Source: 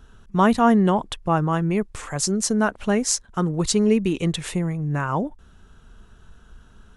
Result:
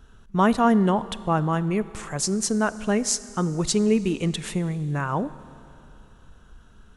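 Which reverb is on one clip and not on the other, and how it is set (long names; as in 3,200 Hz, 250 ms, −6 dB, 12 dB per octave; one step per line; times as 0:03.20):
four-comb reverb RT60 2.9 s, combs from 25 ms, DRR 16 dB
level −2 dB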